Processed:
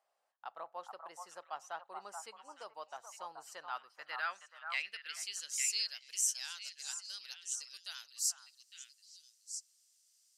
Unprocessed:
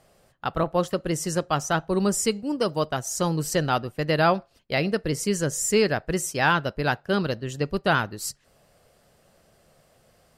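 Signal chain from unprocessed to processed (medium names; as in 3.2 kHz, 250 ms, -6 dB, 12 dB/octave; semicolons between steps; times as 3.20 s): differentiator; band-pass sweep 830 Hz -> 6.1 kHz, 3.40–6.14 s; repeats whose band climbs or falls 429 ms, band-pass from 970 Hz, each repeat 1.4 oct, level -3 dB; trim +3.5 dB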